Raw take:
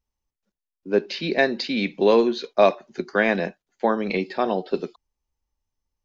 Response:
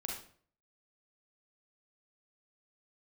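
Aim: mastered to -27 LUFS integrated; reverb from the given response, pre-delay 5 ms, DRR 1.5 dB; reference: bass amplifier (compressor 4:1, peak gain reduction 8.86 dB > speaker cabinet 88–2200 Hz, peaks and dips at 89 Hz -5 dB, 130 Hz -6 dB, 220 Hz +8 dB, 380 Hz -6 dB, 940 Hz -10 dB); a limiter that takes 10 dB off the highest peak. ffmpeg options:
-filter_complex "[0:a]alimiter=limit=-13dB:level=0:latency=1,asplit=2[a][b];[1:a]atrim=start_sample=2205,adelay=5[c];[b][c]afir=irnorm=-1:irlink=0,volume=-2dB[d];[a][d]amix=inputs=2:normalize=0,acompressor=threshold=-24dB:ratio=4,highpass=f=88:w=0.5412,highpass=f=88:w=1.3066,equalizer=f=89:t=q:w=4:g=-5,equalizer=f=130:t=q:w=4:g=-6,equalizer=f=220:t=q:w=4:g=8,equalizer=f=380:t=q:w=4:g=-6,equalizer=f=940:t=q:w=4:g=-10,lowpass=f=2.2k:w=0.5412,lowpass=f=2.2k:w=1.3066,volume=2dB"

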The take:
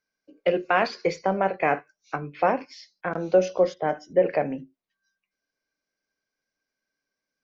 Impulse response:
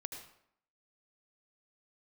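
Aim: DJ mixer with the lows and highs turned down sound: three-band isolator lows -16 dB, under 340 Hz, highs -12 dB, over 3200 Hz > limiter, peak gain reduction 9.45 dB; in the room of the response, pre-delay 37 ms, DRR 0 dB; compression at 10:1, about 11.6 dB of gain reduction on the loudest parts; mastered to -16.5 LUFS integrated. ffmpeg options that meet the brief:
-filter_complex "[0:a]acompressor=threshold=-26dB:ratio=10,asplit=2[a][b];[1:a]atrim=start_sample=2205,adelay=37[c];[b][c]afir=irnorm=-1:irlink=0,volume=2dB[d];[a][d]amix=inputs=2:normalize=0,acrossover=split=340 3200:gain=0.158 1 0.251[e][f][g];[e][f][g]amix=inputs=3:normalize=0,volume=19dB,alimiter=limit=-5dB:level=0:latency=1"

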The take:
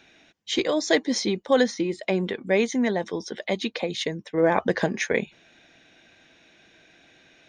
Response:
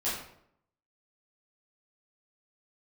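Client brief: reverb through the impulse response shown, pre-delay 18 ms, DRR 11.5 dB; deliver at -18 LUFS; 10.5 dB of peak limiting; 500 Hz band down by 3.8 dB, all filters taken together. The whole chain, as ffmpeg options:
-filter_complex "[0:a]equalizer=f=500:t=o:g=-4.5,alimiter=limit=-18dB:level=0:latency=1,asplit=2[a][b];[1:a]atrim=start_sample=2205,adelay=18[c];[b][c]afir=irnorm=-1:irlink=0,volume=-18.5dB[d];[a][d]amix=inputs=2:normalize=0,volume=11.5dB"

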